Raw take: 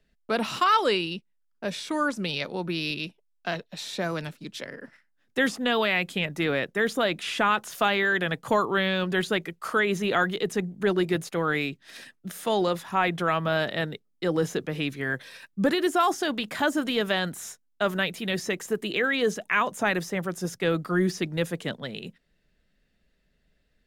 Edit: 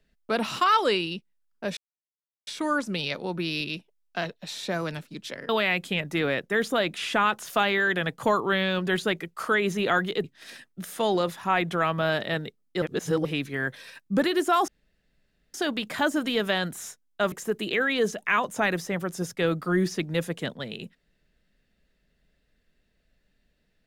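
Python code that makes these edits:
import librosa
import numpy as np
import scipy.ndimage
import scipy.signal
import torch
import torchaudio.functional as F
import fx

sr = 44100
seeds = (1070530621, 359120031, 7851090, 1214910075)

y = fx.edit(x, sr, fx.insert_silence(at_s=1.77, length_s=0.7),
    fx.cut(start_s=4.79, length_s=0.95),
    fx.cut(start_s=10.49, length_s=1.22),
    fx.reverse_span(start_s=14.29, length_s=0.43),
    fx.insert_room_tone(at_s=16.15, length_s=0.86),
    fx.cut(start_s=17.93, length_s=0.62), tone=tone)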